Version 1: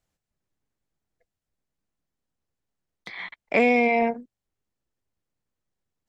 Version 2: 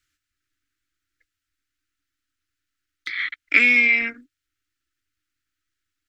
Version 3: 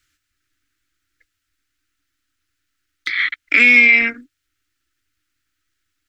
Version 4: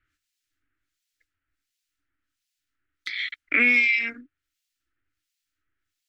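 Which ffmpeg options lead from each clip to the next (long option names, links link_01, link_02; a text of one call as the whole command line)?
ffmpeg -i in.wav -af "firequalizer=gain_entry='entry(110,0);entry(180,-21);entry(290,6);entry(450,-14);entry(850,-28);entry(1300,12);entry(9200,6)':delay=0.05:min_phase=1,volume=-1dB" out.wav
ffmpeg -i in.wav -af "alimiter=level_in=8.5dB:limit=-1dB:release=50:level=0:latency=1,volume=-1dB" out.wav
ffmpeg -i in.wav -filter_complex "[0:a]acrossover=split=2400[link_01][link_02];[link_01]aeval=exprs='val(0)*(1-1/2+1/2*cos(2*PI*1.4*n/s))':channel_layout=same[link_03];[link_02]aeval=exprs='val(0)*(1-1/2-1/2*cos(2*PI*1.4*n/s))':channel_layout=same[link_04];[link_03][link_04]amix=inputs=2:normalize=0,volume=-3dB" out.wav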